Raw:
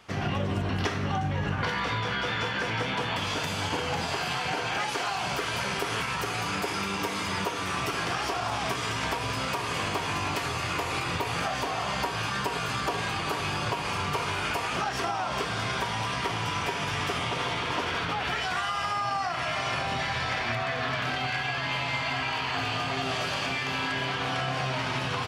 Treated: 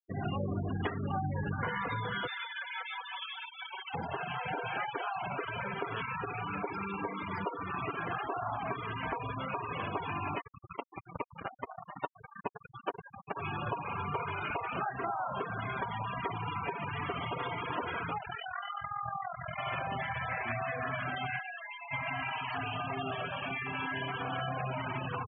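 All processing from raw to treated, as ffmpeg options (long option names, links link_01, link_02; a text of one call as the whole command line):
ffmpeg -i in.wav -filter_complex "[0:a]asettb=1/sr,asplit=3[link_01][link_02][link_03];[link_01]atrim=end=2.274[link_04];[link_02]atrim=start=2.27:end=3.94,asetpts=PTS-STARTPTS,afade=type=in:duration=0.004:curve=qsin,afade=type=out:start_time=1.666:duration=0.004:curve=qsin,highpass=frequency=1500:poles=1,aecho=1:1:5.3:0.56,atrim=end_sample=73647[link_05];[link_03]atrim=start=3.936[link_06];[link_04][link_05]acrossfade=duration=0.004:curve1=hsin:curve2=qsin[link_07];[link_07][link_06]acrossfade=duration=0.004:curve1=qsin:curve2=hsin,asettb=1/sr,asplit=3[link_08][link_09][link_10];[link_08]atrim=end=10.414[link_11];[link_09]atrim=start=10.41:end=13.36,asetpts=PTS-STARTPTS,afade=type=in:duration=0.004:curve=qsin,afade=type=out:start_time=2.946:duration=0.004:curve=qsin,lowpass=frequency=8900:width=0.5412,lowpass=frequency=8900:width=1.3066,acrusher=bits=3:mix=0:aa=0.5[link_12];[link_10]atrim=start=13.356[link_13];[link_11][link_12]acrossfade=duration=0.004:curve1=hsin:curve2=qsin[link_14];[link_14][link_13]acrossfade=duration=0.004:curve1=qsin:curve2=hsin,asettb=1/sr,asplit=3[link_15][link_16][link_17];[link_15]atrim=end=18.184[link_18];[link_16]atrim=start=18.18:end=19.58,asetpts=PTS-STARTPTS,afade=type=in:duration=0.004:curve=qsin,afade=type=out:start_time=1.396:duration=0.004:curve=qsin,lowpass=frequency=4000:width=0.5412,lowpass=frequency=4000:width=1.3066,asubboost=boost=4.5:cutoff=210,tremolo=f=42:d=0.788[link_19];[link_17]atrim=start=19.576[link_20];[link_18][link_19]acrossfade=duration=0.004:curve1=hsin:curve2=qsin[link_21];[link_21][link_20]acrossfade=duration=0.004:curve1=qsin:curve2=hsin,asettb=1/sr,asplit=3[link_22][link_23][link_24];[link_22]atrim=end=21.394[link_25];[link_23]atrim=start=21.39:end=21.91,asetpts=PTS-STARTPTS,afade=type=in:duration=0.004:curve=qsin,afade=type=out:start_time=0.516:duration=0.004:curve=qsin,lowshelf=frequency=150:gain=-10,acrossover=split=150|710[link_26][link_27][link_28];[link_26]acompressor=threshold=-53dB:ratio=4[link_29];[link_27]acompressor=threshold=-45dB:ratio=4[link_30];[link_28]acompressor=threshold=-33dB:ratio=4[link_31];[link_29][link_30][link_31]amix=inputs=3:normalize=0[link_32];[link_24]atrim=start=21.906[link_33];[link_25][link_32]acrossfade=duration=0.004:curve1=hsin:curve2=qsin[link_34];[link_34][link_33]acrossfade=duration=0.004:curve1=qsin:curve2=hsin,acrossover=split=4400[link_35][link_36];[link_36]acompressor=threshold=-50dB:ratio=4:attack=1:release=60[link_37];[link_35][link_37]amix=inputs=2:normalize=0,highpass=frequency=63:poles=1,afftfilt=real='re*gte(hypot(re,im),0.0562)':imag='im*gte(hypot(re,im),0.0562)':win_size=1024:overlap=0.75,volume=-4dB" out.wav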